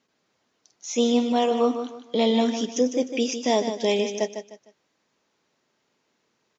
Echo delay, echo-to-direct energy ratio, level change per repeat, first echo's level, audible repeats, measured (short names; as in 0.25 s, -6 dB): 0.152 s, -8.5 dB, -10.5 dB, -9.0 dB, 3